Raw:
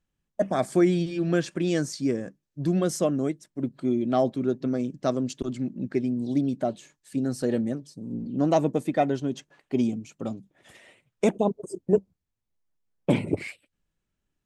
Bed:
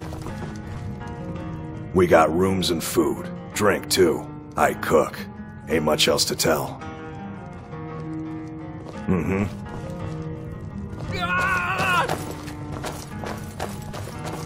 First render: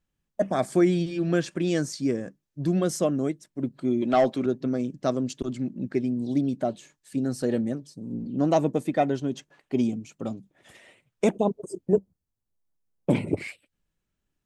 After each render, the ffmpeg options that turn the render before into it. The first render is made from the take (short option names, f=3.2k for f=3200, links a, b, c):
-filter_complex "[0:a]asettb=1/sr,asplit=3[a][b][c];[a]atrim=end=4.024[d];[b]atrim=start=4.02:end=4.46,asetpts=PTS-STARTPTS,afade=t=in:d=0.004:c=qsin,afade=t=out:st=0.436:d=0.004:c=qsin,asplit=2[e][f];[f]highpass=f=720:p=1,volume=14dB,asoftclip=type=tanh:threshold=-11dB[g];[e][g]amix=inputs=2:normalize=0,lowpass=f=7.9k:p=1,volume=-6dB[h];[c]atrim=start=4.456[i];[d][h]acrossfade=d=0.004:c1=hsin:c2=qsin[j];[j][i]acrossfade=d=0.004:c1=qsin:c2=hsin,asettb=1/sr,asplit=3[k][l][m];[k]atrim=end=11.934[n];[l]atrim=start=11.93:end=13.15,asetpts=PTS-STARTPTS,afade=t=in:d=0.004:c=qsin,afade=t=out:st=1.216:d=0.004:c=qsin,equalizer=f=2.8k:w=0.7:g=-9[o];[m]atrim=start=13.146[p];[n][o]acrossfade=d=0.004:c1=hsin:c2=qsin[q];[q][p]acrossfade=d=0.004:c1=qsin:c2=hsin"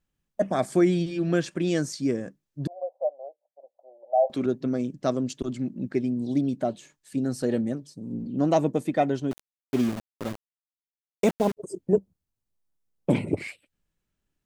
-filter_complex "[0:a]asettb=1/sr,asplit=3[a][b][c];[a]atrim=end=2.674[d];[b]atrim=start=2.67:end=4.3,asetpts=PTS-STARTPTS,afade=t=in:d=0.004:c=qsin,afade=t=out:st=1.626:d=0.004:c=qsin,asuperpass=centerf=660:order=8:qfactor=2.2[e];[c]atrim=start=4.296[f];[d][e]acrossfade=d=0.004:c1=hsin:c2=qsin[g];[g][f]acrossfade=d=0.004:c1=qsin:c2=hsin,asettb=1/sr,asplit=3[h][i][j];[h]atrim=end=9.314[k];[i]atrim=start=9.31:end=11.57,asetpts=PTS-STARTPTS,afade=t=in:d=0.004:c=qsin,afade=t=out:st=2.256:d=0.004:c=qsin,aeval=exprs='val(0)*gte(abs(val(0)),0.0282)':c=same[l];[j]atrim=start=11.566[m];[k][l]acrossfade=d=0.004:c1=hsin:c2=qsin[n];[n][m]acrossfade=d=0.004:c1=qsin:c2=hsin"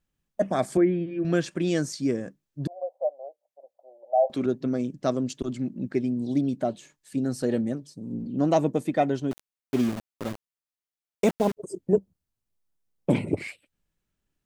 -filter_complex "[0:a]asettb=1/sr,asplit=3[a][b][c];[a]atrim=end=0.774[d];[b]atrim=start=0.77:end=1.25,asetpts=PTS-STARTPTS,afade=t=in:d=0.004:c=qsin,afade=t=out:st=0.476:d=0.004:c=qsin,highpass=120,equalizer=f=160:t=q:w=4:g=-5,equalizer=f=800:t=q:w=4:g=-10,equalizer=f=1.3k:t=q:w=4:g=-8,lowpass=f=2.1k:w=0.5412,lowpass=f=2.1k:w=1.3066[e];[c]atrim=start=1.246[f];[d][e]acrossfade=d=0.004:c1=hsin:c2=qsin[g];[g][f]acrossfade=d=0.004:c1=qsin:c2=hsin"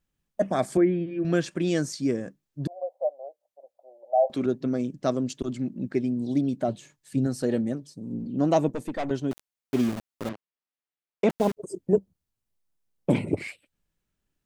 -filter_complex "[0:a]asettb=1/sr,asplit=3[a][b][c];[a]atrim=end=6.684[d];[b]atrim=start=6.68:end=7.27,asetpts=PTS-STARTPTS,afade=t=in:d=0.004:c=qsin,afade=t=out:st=0.586:d=0.004:c=qsin,equalizer=f=120:w=1.5:g=8.5[e];[c]atrim=start=7.266[f];[d][e]acrossfade=d=0.004:c1=hsin:c2=qsin[g];[g][f]acrossfade=d=0.004:c1=qsin:c2=hsin,asettb=1/sr,asplit=3[h][i][j];[h]atrim=end=8.684[k];[i]atrim=start=8.68:end=9.11,asetpts=PTS-STARTPTS,afade=t=in:d=0.004:c=qsin,afade=t=out:st=0.426:d=0.004:c=qsin,aeval=exprs='(tanh(20*val(0)+0.5)-tanh(0.5))/20':c=same[l];[j]atrim=start=9.106[m];[k][l]acrossfade=d=0.004:c1=hsin:c2=qsin[n];[n][m]acrossfade=d=0.004:c1=qsin:c2=hsin,asettb=1/sr,asplit=3[o][p][q];[o]atrim=end=10.294[r];[p]atrim=start=10.29:end=11.3,asetpts=PTS-STARTPTS,afade=t=in:d=0.004:c=qsin,afade=t=out:st=1.006:d=0.004:c=qsin,highpass=150,lowpass=3.4k[s];[q]atrim=start=11.296[t];[r][s]acrossfade=d=0.004:c1=hsin:c2=qsin[u];[u][t]acrossfade=d=0.004:c1=qsin:c2=hsin"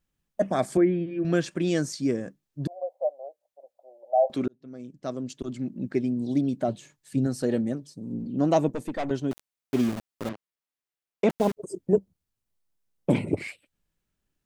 -filter_complex "[0:a]asplit=2[a][b];[a]atrim=end=4.48,asetpts=PTS-STARTPTS,afade=t=out:st=4.476:d=0.004:c=hsin[c];[b]atrim=start=4.48,asetpts=PTS-STARTPTS,afade=t=in:d=1.43[d];[c][d]concat=n=2:v=0:a=1"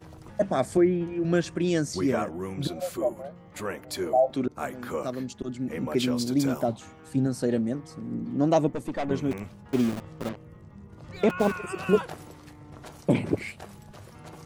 -filter_complex "[1:a]volume=-14dB[a];[0:a][a]amix=inputs=2:normalize=0"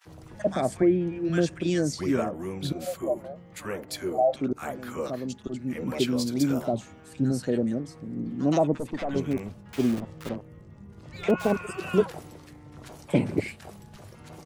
-filter_complex "[0:a]acrossover=split=1100[a][b];[a]adelay=50[c];[c][b]amix=inputs=2:normalize=0"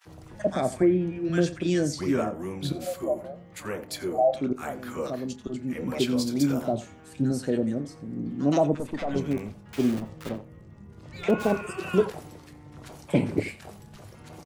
-filter_complex "[0:a]asplit=2[a][b];[b]adelay=28,volume=-14dB[c];[a][c]amix=inputs=2:normalize=0,asplit=2[d][e];[e]adelay=87.46,volume=-17dB,highshelf=f=4k:g=-1.97[f];[d][f]amix=inputs=2:normalize=0"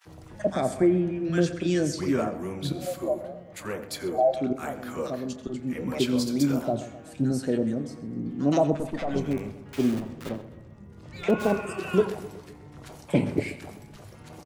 -filter_complex "[0:a]asplit=2[a][b];[b]adelay=129,lowpass=f=4.2k:p=1,volume=-14.5dB,asplit=2[c][d];[d]adelay=129,lowpass=f=4.2k:p=1,volume=0.55,asplit=2[e][f];[f]adelay=129,lowpass=f=4.2k:p=1,volume=0.55,asplit=2[g][h];[h]adelay=129,lowpass=f=4.2k:p=1,volume=0.55,asplit=2[i][j];[j]adelay=129,lowpass=f=4.2k:p=1,volume=0.55[k];[a][c][e][g][i][k]amix=inputs=6:normalize=0"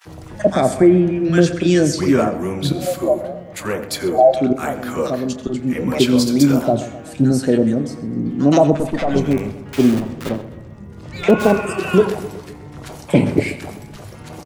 -af "volume=10.5dB,alimiter=limit=-2dB:level=0:latency=1"